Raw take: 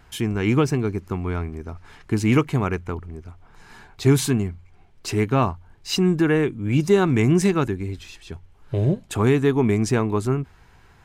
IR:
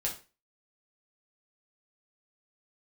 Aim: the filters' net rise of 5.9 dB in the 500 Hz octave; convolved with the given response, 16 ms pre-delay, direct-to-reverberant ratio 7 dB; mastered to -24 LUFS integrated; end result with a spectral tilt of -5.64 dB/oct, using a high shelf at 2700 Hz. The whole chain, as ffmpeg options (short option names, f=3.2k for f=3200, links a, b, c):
-filter_complex "[0:a]equalizer=f=500:t=o:g=7.5,highshelf=f=2.7k:g=7.5,asplit=2[a][b];[1:a]atrim=start_sample=2205,adelay=16[c];[b][c]afir=irnorm=-1:irlink=0,volume=-10.5dB[d];[a][d]amix=inputs=2:normalize=0,volume=-6dB"